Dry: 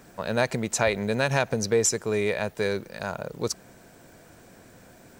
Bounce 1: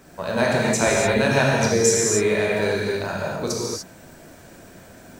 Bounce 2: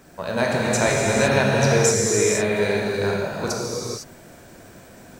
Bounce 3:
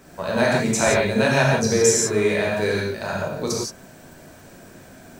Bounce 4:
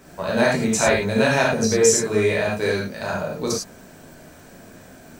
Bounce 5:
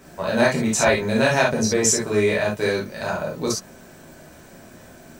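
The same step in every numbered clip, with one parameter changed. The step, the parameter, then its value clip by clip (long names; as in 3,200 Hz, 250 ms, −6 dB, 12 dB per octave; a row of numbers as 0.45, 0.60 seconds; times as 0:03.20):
reverb whose tail is shaped and stops, gate: 320, 530, 200, 130, 90 milliseconds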